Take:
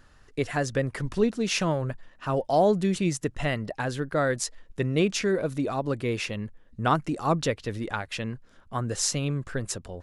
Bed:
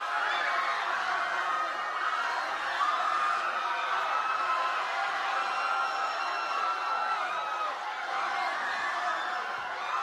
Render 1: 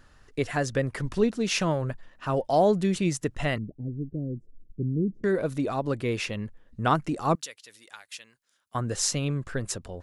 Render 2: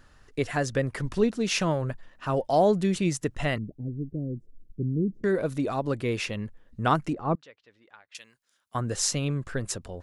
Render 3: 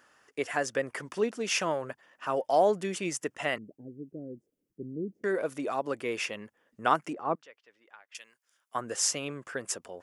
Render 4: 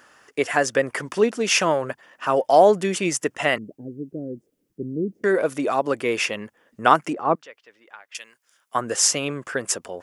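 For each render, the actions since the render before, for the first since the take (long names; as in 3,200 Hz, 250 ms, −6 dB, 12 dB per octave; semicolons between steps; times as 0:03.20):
0:03.58–0:05.24: inverse Chebyshev low-pass filter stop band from 1,100 Hz, stop band 60 dB; 0:07.35–0:08.75: first difference
0:07.13–0:08.15: head-to-tape spacing loss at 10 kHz 42 dB
Bessel high-pass filter 460 Hz, order 2; parametric band 4,000 Hz −11 dB 0.25 octaves
level +9.5 dB; brickwall limiter −2 dBFS, peak gain reduction 1.5 dB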